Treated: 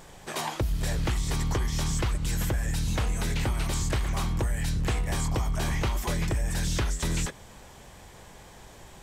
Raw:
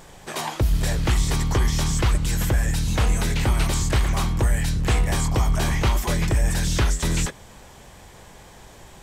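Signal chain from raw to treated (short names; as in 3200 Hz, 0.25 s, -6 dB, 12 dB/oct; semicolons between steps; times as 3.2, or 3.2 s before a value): compressor, threshold -21 dBFS, peak gain reduction 6 dB; gain -3 dB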